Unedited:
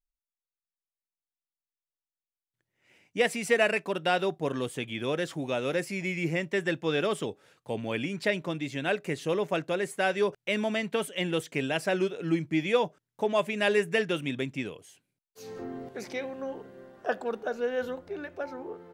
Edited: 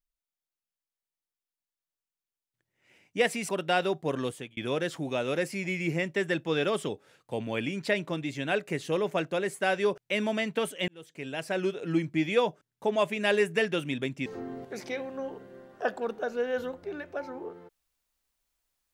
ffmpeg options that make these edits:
-filter_complex "[0:a]asplit=5[s0][s1][s2][s3][s4];[s0]atrim=end=3.492[s5];[s1]atrim=start=3.858:end=4.94,asetpts=PTS-STARTPTS,afade=t=out:st=0.782:d=0.3[s6];[s2]atrim=start=4.94:end=11.25,asetpts=PTS-STARTPTS,afade=t=in:d=0.004:c=hsin,afade=t=out:st=6.306:d=0.004:c=hsin[s7];[s3]atrim=start=11.25:end=14.632,asetpts=PTS-STARTPTS,afade=t=in:d=0.93[s8];[s4]atrim=start=15.498[s9];[s6][s7][s8]concat=n=3:v=0:a=1[s10];[s5][s10]acrossfade=d=0.004:c1=hsin:c2=hsin[s11];[s11][s9]acrossfade=d=0.004:c1=hsin:c2=hsin"

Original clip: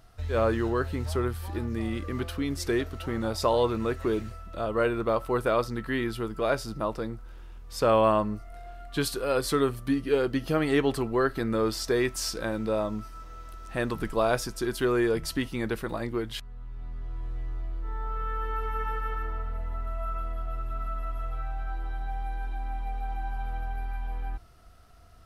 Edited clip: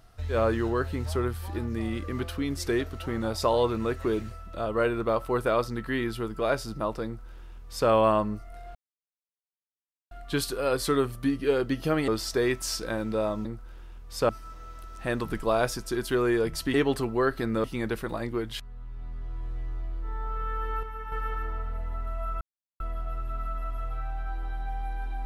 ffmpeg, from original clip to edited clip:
-filter_complex "[0:a]asplit=10[s0][s1][s2][s3][s4][s5][s6][s7][s8][s9];[s0]atrim=end=8.75,asetpts=PTS-STARTPTS,afade=t=out:st=8.746:d=0.004:c=hsin,apad=pad_dur=1.36[s10];[s1]atrim=start=8.75:end=10.722,asetpts=PTS-STARTPTS,afade=t=in:d=0.004:c=hsin[s11];[s2]atrim=start=11.618:end=12.992[s12];[s3]atrim=start=7.048:end=7.892[s13];[s4]atrim=start=12.988:end=15.442[s14];[s5]atrim=start=10.718:end=11.622[s15];[s6]atrim=start=15.438:end=18.632[s16];[s7]atrim=start=18.628:end=18.922,asetpts=PTS-STARTPTS,volume=0.447[s17];[s8]atrim=start=18.918:end=20.21,asetpts=PTS-STARTPTS,afade=t=out:st=1.288:d=0.004:c=hsin,apad=pad_dur=0.39[s18];[s9]atrim=start=20.21,asetpts=PTS-STARTPTS,afade=t=in:d=0.004:c=hsin[s19];[s10][s11]concat=n=2:v=0:a=1[s20];[s20][s12]acrossfade=d=0.004:c1=hsin:c2=hsin[s21];[s21][s13]acrossfade=d=0.004:c1=hsin:c2=hsin[s22];[s22][s14]acrossfade=d=0.004:c1=hsin:c2=hsin[s23];[s23][s15]acrossfade=d=0.004:c1=hsin:c2=hsin[s24];[s24][s16]acrossfade=d=0.004:c1=hsin:c2=hsin[s25];[s25][s17]acrossfade=d=0.004:c1=hsin:c2=hsin[s26];[s18][s19]concat=n=2:v=0:a=1[s27];[s26][s27]acrossfade=d=0.004:c1=hsin:c2=hsin"

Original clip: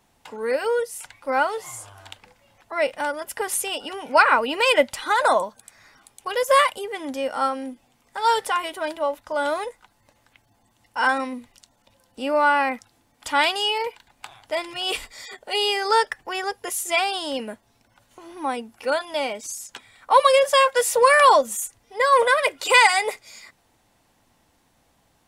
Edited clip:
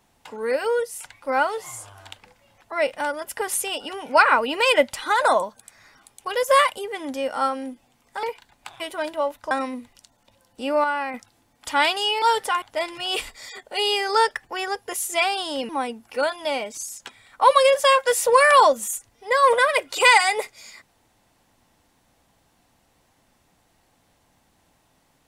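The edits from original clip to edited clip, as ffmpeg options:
-filter_complex "[0:a]asplit=9[s0][s1][s2][s3][s4][s5][s6][s7][s8];[s0]atrim=end=8.232[s9];[s1]atrim=start=13.808:end=14.382[s10];[s2]atrim=start=8.628:end=9.342[s11];[s3]atrim=start=11.098:end=12.432[s12];[s4]atrim=start=12.428:end=12.732,asetpts=PTS-STARTPTS,volume=0.473[s13];[s5]atrim=start=12.728:end=13.812[s14];[s6]atrim=start=8.228:end=8.632[s15];[s7]atrim=start=14.378:end=17.452[s16];[s8]atrim=start=18.378[s17];[s9][s10]acrossfade=d=0.004:c1=hsin:c2=hsin[s18];[s18][s11]acrossfade=d=0.004:c1=hsin:c2=hsin[s19];[s19][s12]acrossfade=d=0.004:c1=hsin:c2=hsin[s20];[s20][s13]acrossfade=d=0.004:c1=hsin:c2=hsin[s21];[s21][s14]acrossfade=d=0.004:c1=hsin:c2=hsin[s22];[s22][s15]acrossfade=d=0.004:c1=hsin:c2=hsin[s23];[s23][s16]acrossfade=d=0.004:c1=hsin:c2=hsin[s24];[s24][s17]acrossfade=d=0.004:c1=hsin:c2=hsin"

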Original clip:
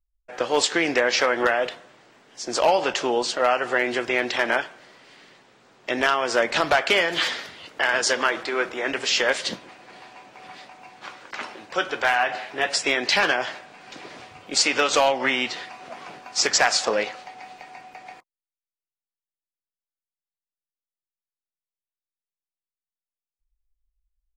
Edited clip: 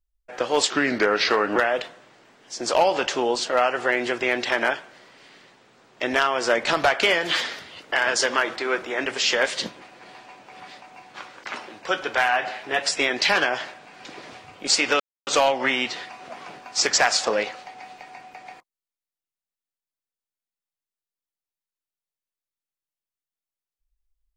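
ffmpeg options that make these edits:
-filter_complex "[0:a]asplit=4[s0][s1][s2][s3];[s0]atrim=end=0.704[s4];[s1]atrim=start=0.7:end=1.43,asetpts=PTS-STARTPTS,asetrate=37485,aresample=44100,atrim=end_sample=37874,asetpts=PTS-STARTPTS[s5];[s2]atrim=start=1.426:end=14.87,asetpts=PTS-STARTPTS,afade=t=out:st=13.44:d=0.004:c=hsin,apad=pad_dur=0.27[s6];[s3]atrim=start=14.87,asetpts=PTS-STARTPTS,afade=t=in:d=0.004:c=hsin[s7];[s4][s5]acrossfade=d=0.004:c1=hsin:c2=hsin[s8];[s6][s7]concat=n=2:v=0:a=1[s9];[s8][s9]acrossfade=d=0.004:c1=hsin:c2=hsin"

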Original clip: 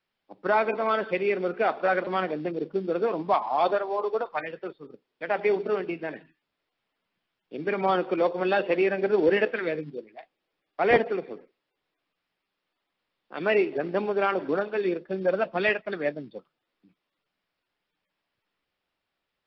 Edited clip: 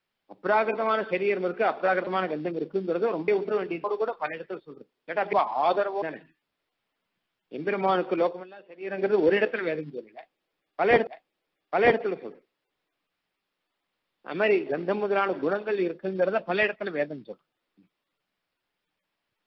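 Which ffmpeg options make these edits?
-filter_complex "[0:a]asplit=8[s0][s1][s2][s3][s4][s5][s6][s7];[s0]atrim=end=3.282[s8];[s1]atrim=start=5.458:end=6.022[s9];[s2]atrim=start=3.968:end=5.462[s10];[s3]atrim=start=3.278:end=3.972[s11];[s4]atrim=start=6.018:end=8.46,asetpts=PTS-STARTPTS,afade=t=out:st=2.202:d=0.24:silence=0.0707946[s12];[s5]atrim=start=8.46:end=8.8,asetpts=PTS-STARTPTS,volume=0.0708[s13];[s6]atrim=start=8.8:end=11.072,asetpts=PTS-STARTPTS,afade=t=in:d=0.24:silence=0.0707946[s14];[s7]atrim=start=10.128[s15];[s8][s9]acrossfade=d=0.004:c1=hsin:c2=hsin[s16];[s16][s10]acrossfade=d=0.004:c1=hsin:c2=hsin[s17];[s17][s11]acrossfade=d=0.004:c1=hsin:c2=hsin[s18];[s12][s13][s14]concat=n=3:v=0:a=1[s19];[s18][s19]acrossfade=d=0.004:c1=hsin:c2=hsin[s20];[s20][s15]acrossfade=d=0.004:c1=hsin:c2=hsin"

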